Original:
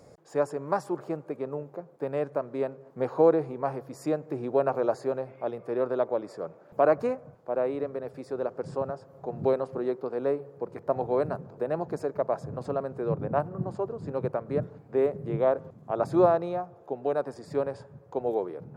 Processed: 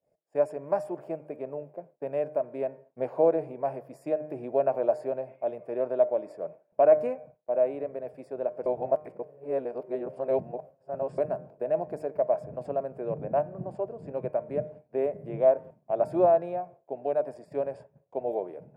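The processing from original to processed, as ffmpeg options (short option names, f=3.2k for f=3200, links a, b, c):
-filter_complex "[0:a]asplit=3[a][b][c];[a]atrim=end=8.662[d];[b]atrim=start=8.658:end=11.182,asetpts=PTS-STARTPTS,areverse[e];[c]atrim=start=11.178[f];[d][e]acrossfade=d=0.004:c1=hsin:c2=hsin[g];[g][f]acrossfade=d=0.004:c1=hsin:c2=hsin,bandreject=f=152.3:t=h:w=4,bandreject=f=304.6:t=h:w=4,bandreject=f=456.9:t=h:w=4,bandreject=f=609.2:t=h:w=4,bandreject=f=761.5:t=h:w=4,bandreject=f=913.8:t=h:w=4,bandreject=f=1.0661k:t=h:w=4,bandreject=f=1.2184k:t=h:w=4,bandreject=f=1.3707k:t=h:w=4,bandreject=f=1.523k:t=h:w=4,bandreject=f=1.6753k:t=h:w=4,bandreject=f=1.8276k:t=h:w=4,bandreject=f=1.9799k:t=h:w=4,bandreject=f=2.1322k:t=h:w=4,bandreject=f=2.2845k:t=h:w=4,bandreject=f=2.4368k:t=h:w=4,agate=range=-33dB:threshold=-40dB:ratio=3:detection=peak,equalizer=f=100:t=o:w=0.33:g=-9,equalizer=f=630:t=o:w=0.33:g=12,equalizer=f=1.25k:t=o:w=0.33:g=-9,equalizer=f=2.5k:t=o:w=0.33:g=5,equalizer=f=4k:t=o:w=0.33:g=-11,equalizer=f=6.3k:t=o:w=0.33:g=-11,volume=-5dB"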